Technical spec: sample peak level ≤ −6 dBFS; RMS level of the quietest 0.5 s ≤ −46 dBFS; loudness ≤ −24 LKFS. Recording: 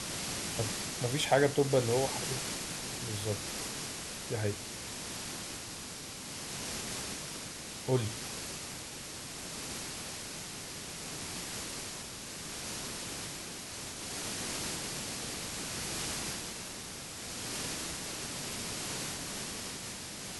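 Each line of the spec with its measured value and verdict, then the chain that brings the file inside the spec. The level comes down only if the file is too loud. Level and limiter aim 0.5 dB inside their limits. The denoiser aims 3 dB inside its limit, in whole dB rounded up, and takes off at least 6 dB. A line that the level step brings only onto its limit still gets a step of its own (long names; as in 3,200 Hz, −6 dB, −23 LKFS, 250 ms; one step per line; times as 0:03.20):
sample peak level −13.0 dBFS: in spec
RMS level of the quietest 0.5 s −44 dBFS: out of spec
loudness −36.0 LKFS: in spec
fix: broadband denoise 6 dB, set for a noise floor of −44 dBFS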